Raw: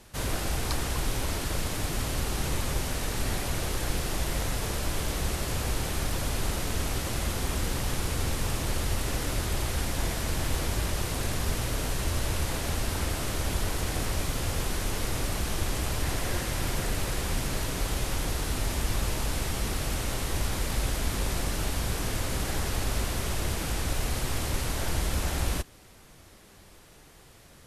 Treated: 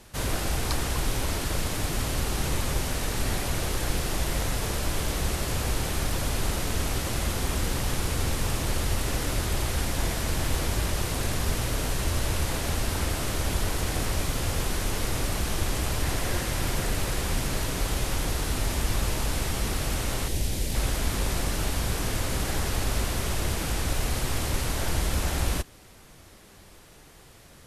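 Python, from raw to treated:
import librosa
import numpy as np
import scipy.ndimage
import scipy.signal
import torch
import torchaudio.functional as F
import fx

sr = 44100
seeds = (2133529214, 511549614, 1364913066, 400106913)

y = fx.peak_eq(x, sr, hz=1200.0, db=-14.0, octaves=1.2, at=(20.28, 20.75))
y = y * librosa.db_to_amplitude(2.0)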